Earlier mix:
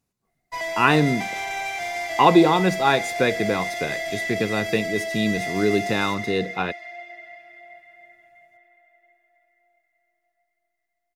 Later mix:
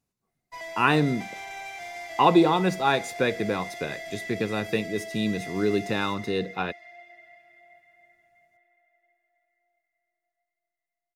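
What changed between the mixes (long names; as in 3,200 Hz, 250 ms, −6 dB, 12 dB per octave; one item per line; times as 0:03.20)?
speech −3.5 dB
background −9.5 dB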